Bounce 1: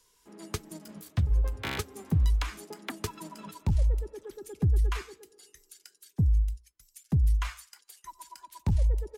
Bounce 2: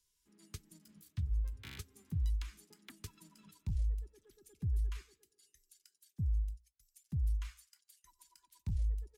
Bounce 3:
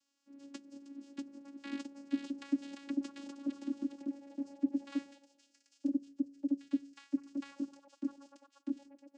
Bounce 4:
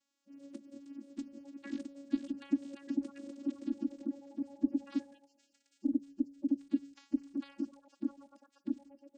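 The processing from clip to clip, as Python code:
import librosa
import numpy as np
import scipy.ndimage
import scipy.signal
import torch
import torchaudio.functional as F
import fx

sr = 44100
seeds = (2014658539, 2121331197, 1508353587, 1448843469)

y1 = fx.tone_stack(x, sr, knobs='6-0-2')
y1 = y1 * 10.0 ** (2.5 / 20.0)
y2 = fx.echo_pitch(y1, sr, ms=731, semitones=3, count=3, db_per_echo=-3.0)
y2 = fx.vocoder(y2, sr, bands=8, carrier='saw', carrier_hz=279.0)
y2 = y2 * 10.0 ** (6.0 / 20.0)
y3 = fx.spec_quant(y2, sr, step_db=30)
y3 = fx.low_shelf(y3, sr, hz=390.0, db=7.5)
y3 = y3 * 10.0 ** (-3.0 / 20.0)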